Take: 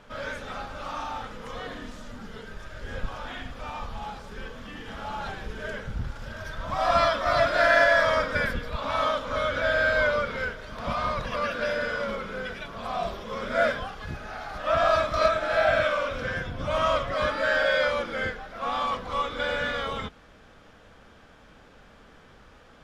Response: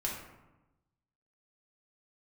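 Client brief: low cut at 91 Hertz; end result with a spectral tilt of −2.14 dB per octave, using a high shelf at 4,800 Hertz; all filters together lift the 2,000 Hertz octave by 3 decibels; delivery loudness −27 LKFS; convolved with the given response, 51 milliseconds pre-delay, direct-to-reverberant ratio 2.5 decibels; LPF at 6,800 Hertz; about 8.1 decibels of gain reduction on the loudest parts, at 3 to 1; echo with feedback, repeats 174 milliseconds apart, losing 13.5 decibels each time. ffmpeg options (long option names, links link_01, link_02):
-filter_complex "[0:a]highpass=91,lowpass=6800,equalizer=frequency=2000:width_type=o:gain=5,highshelf=frequency=4800:gain=-6.5,acompressor=threshold=-25dB:ratio=3,aecho=1:1:174|348:0.211|0.0444,asplit=2[link_01][link_02];[1:a]atrim=start_sample=2205,adelay=51[link_03];[link_02][link_03]afir=irnorm=-1:irlink=0,volume=-6dB[link_04];[link_01][link_04]amix=inputs=2:normalize=0,volume=0.5dB"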